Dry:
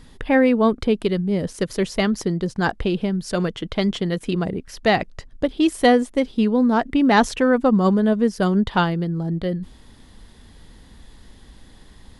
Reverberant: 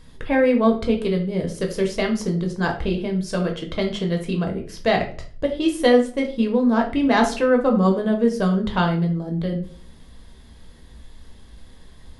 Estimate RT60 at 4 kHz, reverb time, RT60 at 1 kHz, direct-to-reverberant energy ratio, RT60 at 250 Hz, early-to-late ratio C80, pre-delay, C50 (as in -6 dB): 0.35 s, 0.45 s, 0.40 s, 2.0 dB, 0.60 s, 14.5 dB, 6 ms, 9.5 dB